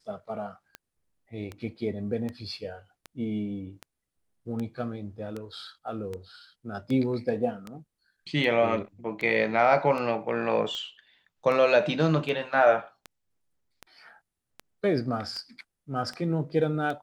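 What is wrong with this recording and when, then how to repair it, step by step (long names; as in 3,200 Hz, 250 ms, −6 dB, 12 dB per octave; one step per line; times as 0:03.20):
scratch tick 78 rpm −22 dBFS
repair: click removal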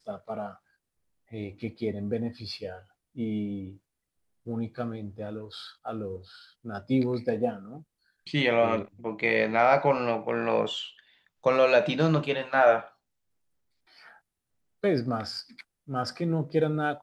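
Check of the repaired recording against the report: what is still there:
none of them is left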